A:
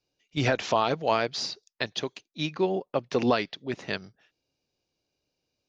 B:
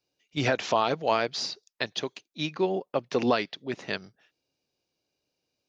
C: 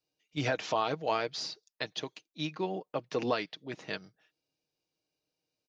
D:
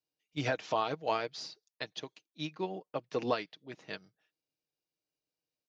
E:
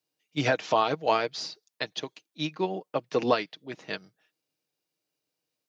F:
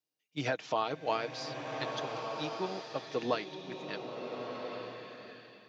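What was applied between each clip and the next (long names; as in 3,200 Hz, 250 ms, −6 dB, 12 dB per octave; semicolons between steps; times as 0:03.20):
low-shelf EQ 81 Hz −10.5 dB
comb filter 6.4 ms, depth 37%; level −6 dB
expander for the loud parts 1.5 to 1, over −42 dBFS
high-pass filter 110 Hz; level +7.5 dB
slow-attack reverb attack 1,400 ms, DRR 3.5 dB; level −8 dB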